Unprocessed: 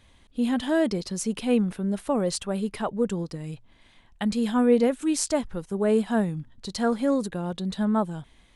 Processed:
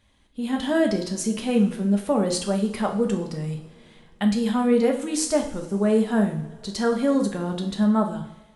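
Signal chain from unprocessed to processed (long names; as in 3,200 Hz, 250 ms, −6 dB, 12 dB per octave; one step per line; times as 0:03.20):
coupled-rooms reverb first 0.53 s, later 2.8 s, from −20 dB, DRR 2.5 dB
automatic gain control gain up to 8.5 dB
level −6.5 dB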